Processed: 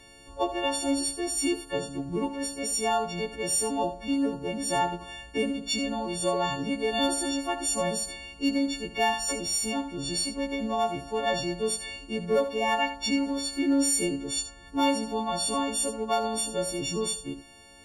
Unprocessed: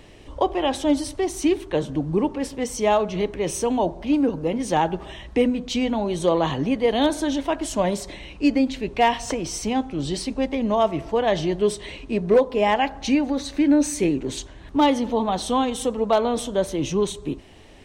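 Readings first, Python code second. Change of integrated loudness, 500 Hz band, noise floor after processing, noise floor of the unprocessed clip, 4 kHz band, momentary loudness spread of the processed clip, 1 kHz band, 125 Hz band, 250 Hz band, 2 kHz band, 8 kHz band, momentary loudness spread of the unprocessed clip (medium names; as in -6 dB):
-5.0 dB, -8.0 dB, -49 dBFS, -43 dBFS, +0.5 dB, 6 LU, -5.5 dB, -9.0 dB, -7.0 dB, -2.0 dB, +4.0 dB, 8 LU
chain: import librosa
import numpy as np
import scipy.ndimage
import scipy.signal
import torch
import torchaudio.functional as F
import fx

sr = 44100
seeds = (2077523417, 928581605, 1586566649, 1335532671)

y = fx.freq_snap(x, sr, grid_st=4)
y = y + 10.0 ** (-12.0 / 20.0) * np.pad(y, (int(76 * sr / 1000.0), 0))[:len(y)]
y = F.gain(torch.from_numpy(y), -8.0).numpy()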